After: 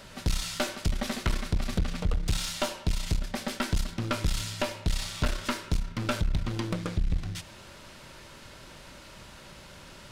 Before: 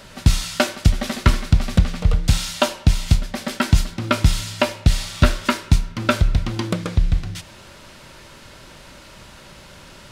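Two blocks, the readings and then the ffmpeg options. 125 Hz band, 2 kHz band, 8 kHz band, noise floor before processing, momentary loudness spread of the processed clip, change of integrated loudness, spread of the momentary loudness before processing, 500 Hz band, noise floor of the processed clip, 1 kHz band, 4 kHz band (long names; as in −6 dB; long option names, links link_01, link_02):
−12.5 dB, −10.0 dB, −7.5 dB, −44 dBFS, 17 LU, −11.0 dB, 5 LU, −10.0 dB, −49 dBFS, −10.5 dB, −8.5 dB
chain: -filter_complex "[0:a]asplit=2[link_01][link_02];[link_02]alimiter=limit=-14dB:level=0:latency=1:release=154,volume=0dB[link_03];[link_01][link_03]amix=inputs=2:normalize=0,aeval=exprs='(tanh(3.98*val(0)+0.5)-tanh(0.5))/3.98':channel_layout=same,volume=-9dB"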